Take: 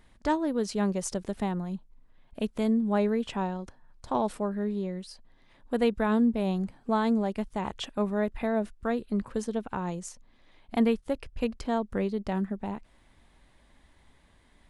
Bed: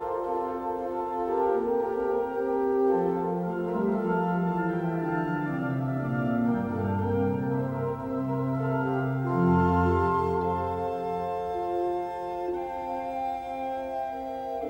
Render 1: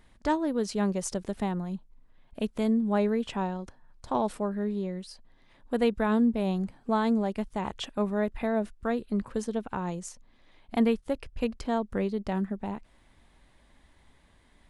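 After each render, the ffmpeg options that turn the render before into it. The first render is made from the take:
-af anull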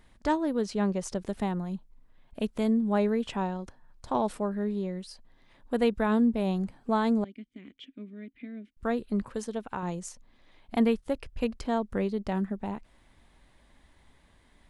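-filter_complex "[0:a]asettb=1/sr,asplit=3[s0][s1][s2];[s0]atrim=end=0.614[s3];[s1]atrim=start=0.61:end=1.22,asetpts=PTS-STARTPTS,afade=t=in:d=0.004:c=qsin,afade=t=out:st=0.606:d=0.004:c=qsin,highshelf=f=7400:g=-10.5[s4];[s2]atrim=start=1.216[s5];[s3][s4]acrossfade=d=0.004:c1=hsin:c2=qsin[s6];[s6][s5]acrossfade=d=0.004:c1=qsin:c2=hsin,asettb=1/sr,asplit=3[s7][s8][s9];[s7]atrim=end=7.244[s10];[s8]atrim=start=7.24:end=8.77,asetpts=PTS-STARTPTS,afade=t=in:d=0.004:c=qsin,afade=t=out:st=1.526:d=0.004:c=qsin,asplit=3[s11][s12][s13];[s11]bandpass=f=270:t=q:w=8,volume=1[s14];[s12]bandpass=f=2290:t=q:w=8,volume=0.501[s15];[s13]bandpass=f=3010:t=q:w=8,volume=0.355[s16];[s14][s15][s16]amix=inputs=3:normalize=0[s17];[s9]atrim=start=8.766[s18];[s10][s17]acrossfade=d=0.004:c1=hsin:c2=qsin[s19];[s19][s18]acrossfade=d=0.004:c1=qsin:c2=hsin,asettb=1/sr,asplit=3[s20][s21][s22];[s20]atrim=end=9.294[s23];[s21]atrim=start=9.29:end=9.83,asetpts=PTS-STARTPTS,afade=t=in:d=0.004:c=qsin,afade=t=out:st=0.536:d=0.004:c=qsin,lowshelf=f=410:g=-5.5[s24];[s22]atrim=start=9.826[s25];[s23][s24]acrossfade=d=0.004:c1=hsin:c2=qsin[s26];[s26][s25]acrossfade=d=0.004:c1=qsin:c2=hsin"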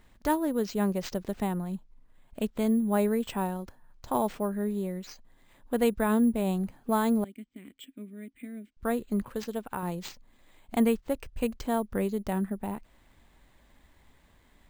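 -af "acrusher=samples=4:mix=1:aa=0.000001"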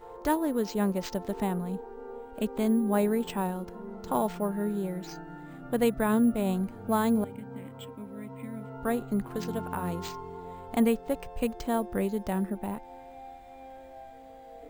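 -filter_complex "[1:a]volume=0.178[s0];[0:a][s0]amix=inputs=2:normalize=0"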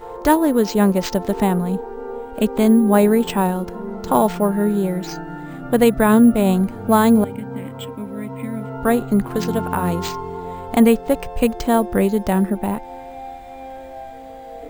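-af "volume=3.98,alimiter=limit=0.708:level=0:latency=1"

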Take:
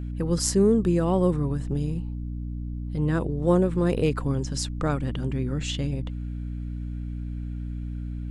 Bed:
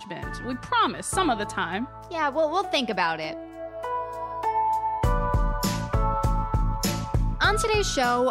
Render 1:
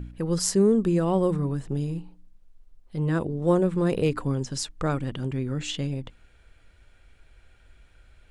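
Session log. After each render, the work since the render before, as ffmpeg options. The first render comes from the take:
-af "bandreject=f=60:t=h:w=4,bandreject=f=120:t=h:w=4,bandreject=f=180:t=h:w=4,bandreject=f=240:t=h:w=4,bandreject=f=300:t=h:w=4"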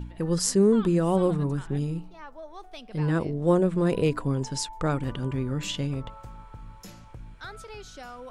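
-filter_complex "[1:a]volume=0.106[s0];[0:a][s0]amix=inputs=2:normalize=0"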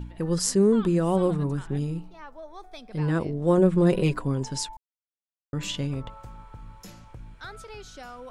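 -filter_complex "[0:a]asettb=1/sr,asplit=3[s0][s1][s2];[s0]atrim=end=2.454[s3];[s1]atrim=start=2.45:end=2.93,asetpts=PTS-STARTPTS,afade=t=in:d=0.004:c=qsin,afade=t=out:st=0.476:d=0.004:c=qsin,asuperstop=centerf=2900:order=4:qfactor=6.1[s4];[s2]atrim=start=2.926[s5];[s3][s4]acrossfade=d=0.004:c1=hsin:c2=qsin[s6];[s6][s5]acrossfade=d=0.004:c1=qsin:c2=hsin,asettb=1/sr,asplit=3[s7][s8][s9];[s7]atrim=end=3.574[s10];[s8]atrim=start=3.57:end=4.18,asetpts=PTS-STARTPTS,afade=t=in:d=0.004:c=qsin,afade=t=out:st=0.606:d=0.004:c=qsin,aecho=1:1:5.5:0.65,atrim=end_sample=26901[s11];[s9]atrim=start=4.176[s12];[s10][s11]acrossfade=d=0.004:c1=hsin:c2=qsin[s13];[s13][s12]acrossfade=d=0.004:c1=qsin:c2=hsin,asplit=3[s14][s15][s16];[s14]atrim=end=4.77,asetpts=PTS-STARTPTS,afade=t=out:st=4.766:d=0.004:c=hsin[s17];[s15]atrim=start=4.77:end=5.53,asetpts=PTS-STARTPTS,volume=0[s18];[s16]atrim=start=5.53,asetpts=PTS-STARTPTS,afade=t=in:d=0.004:c=hsin[s19];[s17][s18][s19]concat=n=3:v=0:a=1"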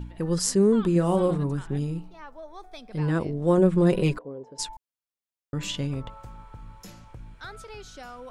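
-filter_complex "[0:a]asettb=1/sr,asplit=3[s0][s1][s2];[s0]atrim=end=0.924[s3];[s1]atrim=start=0.92:end=1.38,asetpts=PTS-STARTPTS,afade=t=in:d=0.004:c=qsin,afade=t=out:st=0.456:d=0.004:c=qsin,asplit=2[s4][s5];[s5]adelay=35,volume=0.398[s6];[s4][s6]amix=inputs=2:normalize=0,atrim=end_sample=20286[s7];[s2]atrim=start=1.376[s8];[s3][s7]acrossfade=d=0.004:c1=hsin:c2=qsin[s9];[s9][s8]acrossfade=d=0.004:c1=qsin:c2=hsin,asplit=3[s10][s11][s12];[s10]afade=t=out:st=4.17:d=0.02[s13];[s11]bandpass=f=490:t=q:w=3.3,afade=t=in:st=4.17:d=0.02,afade=t=out:st=4.58:d=0.02[s14];[s12]afade=t=in:st=4.58:d=0.02[s15];[s13][s14][s15]amix=inputs=3:normalize=0"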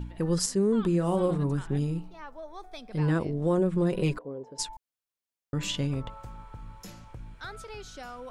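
-af "alimiter=limit=0.15:level=0:latency=1:release=254"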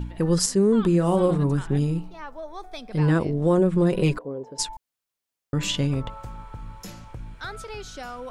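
-af "volume=1.88"

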